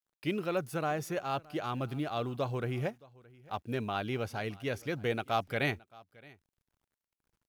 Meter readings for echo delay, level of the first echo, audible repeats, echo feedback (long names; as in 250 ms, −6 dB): 620 ms, −23.5 dB, 1, repeats not evenly spaced